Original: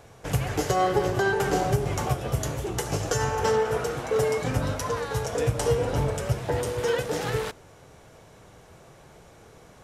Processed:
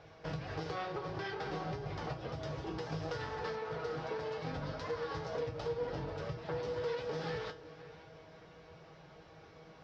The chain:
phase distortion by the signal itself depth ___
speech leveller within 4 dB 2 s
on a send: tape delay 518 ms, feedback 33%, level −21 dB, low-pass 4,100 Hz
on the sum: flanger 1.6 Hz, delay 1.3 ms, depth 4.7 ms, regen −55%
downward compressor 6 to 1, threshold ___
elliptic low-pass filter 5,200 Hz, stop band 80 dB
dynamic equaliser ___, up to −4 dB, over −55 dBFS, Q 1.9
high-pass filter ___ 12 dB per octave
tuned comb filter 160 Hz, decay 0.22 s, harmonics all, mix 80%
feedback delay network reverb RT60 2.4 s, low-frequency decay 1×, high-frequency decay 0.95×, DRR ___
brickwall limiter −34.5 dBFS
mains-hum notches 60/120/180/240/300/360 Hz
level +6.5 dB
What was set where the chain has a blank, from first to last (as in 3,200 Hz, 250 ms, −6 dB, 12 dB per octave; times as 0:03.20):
0.31 ms, −32 dBFS, 2,400 Hz, 44 Hz, 19.5 dB